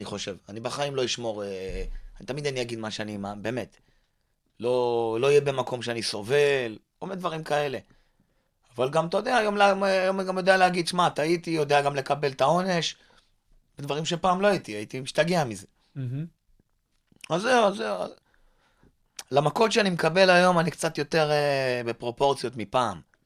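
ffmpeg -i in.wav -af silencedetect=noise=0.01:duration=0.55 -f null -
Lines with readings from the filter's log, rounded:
silence_start: 3.66
silence_end: 4.60 | silence_duration: 0.94
silence_start: 7.81
silence_end: 8.77 | silence_duration: 0.96
silence_start: 12.92
silence_end: 13.79 | silence_duration: 0.87
silence_start: 16.27
silence_end: 17.21 | silence_duration: 0.94
silence_start: 18.18
silence_end: 19.19 | silence_duration: 1.01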